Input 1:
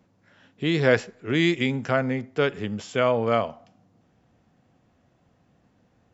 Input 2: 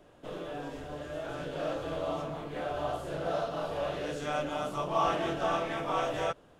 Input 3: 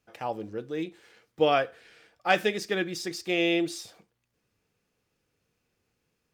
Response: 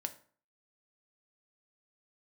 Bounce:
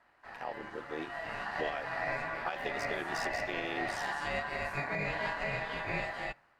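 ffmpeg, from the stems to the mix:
-filter_complex "[1:a]dynaudnorm=f=280:g=7:m=6.5dB,aeval=exprs='val(0)*sin(2*PI*1300*n/s)':c=same,volume=-7dB,asplit=2[a][b];[b]volume=-11.5dB[c];[2:a]lowshelf=f=360:g=-9.5,acompressor=threshold=-31dB:ratio=2,tremolo=f=76:d=0.919,adelay=200,volume=-0.5dB[d];[3:a]atrim=start_sample=2205[e];[c][e]afir=irnorm=-1:irlink=0[f];[a][d][f]amix=inputs=3:normalize=0,highshelf=f=3.9k:g=-6.5,dynaudnorm=f=630:g=5:m=4.5dB,alimiter=limit=-23dB:level=0:latency=1:release=469"

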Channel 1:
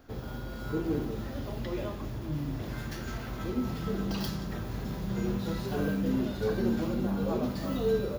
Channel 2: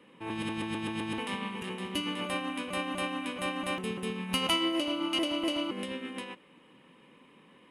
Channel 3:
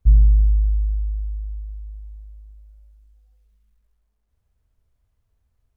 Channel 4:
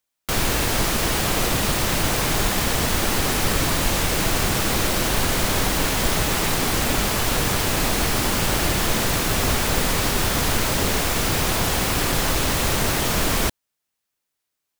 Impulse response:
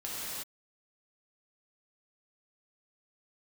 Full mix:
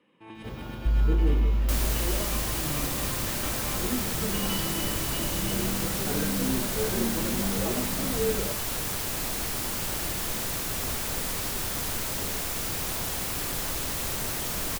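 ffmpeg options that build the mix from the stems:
-filter_complex "[0:a]adelay=350,volume=-0.5dB[a];[1:a]lowpass=8.3k,volume=-11dB,asplit=2[b][c];[c]volume=-6.5dB[d];[2:a]alimiter=limit=-14dB:level=0:latency=1,adelay=800,volume=-4dB[e];[3:a]highshelf=f=6.5k:g=9,adelay=1400,volume=-12.5dB[f];[4:a]atrim=start_sample=2205[g];[d][g]afir=irnorm=-1:irlink=0[h];[a][b][e][f][h]amix=inputs=5:normalize=0"

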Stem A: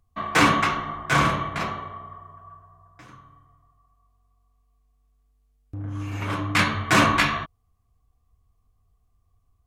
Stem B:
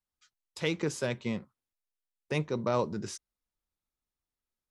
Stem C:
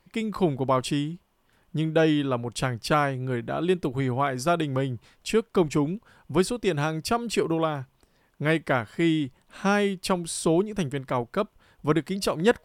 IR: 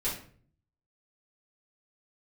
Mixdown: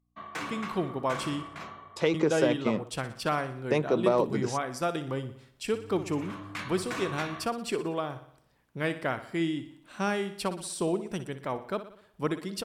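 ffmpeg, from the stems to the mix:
-filter_complex "[0:a]acompressor=threshold=-22dB:ratio=2.5,aeval=exprs='val(0)+0.00141*(sin(2*PI*60*n/s)+sin(2*PI*2*60*n/s)/2+sin(2*PI*3*60*n/s)/3+sin(2*PI*4*60*n/s)/4+sin(2*PI*5*60*n/s)/5)':c=same,volume=-13dB[a];[1:a]equalizer=f=520:t=o:w=2.8:g=9.5,acompressor=threshold=-21dB:ratio=6,adelay=1400,volume=1dB[b];[2:a]adelay=350,volume=-6dB,asplit=3[c][d][e];[c]atrim=end=1.43,asetpts=PTS-STARTPTS,afade=t=out:st=1.426:d=0.004:c=hsin[f];[d]atrim=start=1.43:end=2.14,asetpts=PTS-STARTPTS,volume=0[g];[e]atrim=start=2.14,asetpts=PTS-STARTPTS,afade=t=in:d=0.004:c=hsin[h];[f][g][h]concat=n=3:v=0:a=1,asplit=2[i][j];[j]volume=-12.5dB,aecho=0:1:60|120|180|240|300|360|420|480:1|0.54|0.292|0.157|0.085|0.0459|0.0248|0.0134[k];[a][b][i][k]amix=inputs=4:normalize=0,lowshelf=f=92:g=-10"

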